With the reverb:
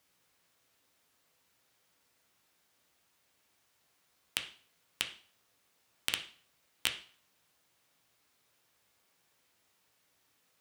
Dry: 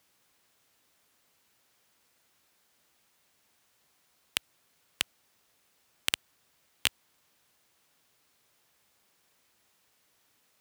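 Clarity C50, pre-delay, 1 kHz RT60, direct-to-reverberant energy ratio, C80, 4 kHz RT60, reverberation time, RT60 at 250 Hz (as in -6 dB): 11.0 dB, 4 ms, 0.45 s, 4.5 dB, 15.5 dB, 0.45 s, 0.45 s, 0.45 s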